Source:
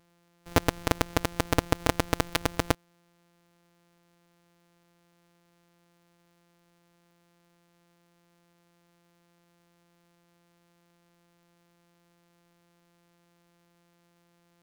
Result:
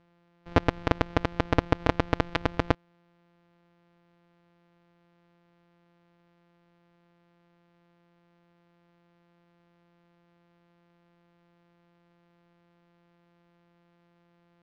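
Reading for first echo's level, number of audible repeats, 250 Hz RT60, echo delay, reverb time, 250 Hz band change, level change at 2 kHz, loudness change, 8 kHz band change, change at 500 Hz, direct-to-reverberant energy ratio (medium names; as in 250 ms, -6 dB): no echo, no echo, no reverb, no echo, no reverb, +1.5 dB, -0.5 dB, +0.5 dB, -18.0 dB, +1.5 dB, no reverb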